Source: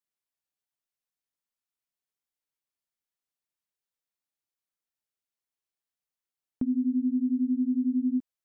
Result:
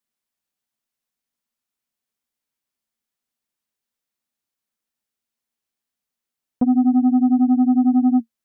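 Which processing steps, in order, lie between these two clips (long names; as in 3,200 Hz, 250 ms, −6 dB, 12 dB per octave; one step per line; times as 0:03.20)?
parametric band 230 Hz +10.5 dB 0.29 octaves
saturating transformer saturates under 250 Hz
level +6 dB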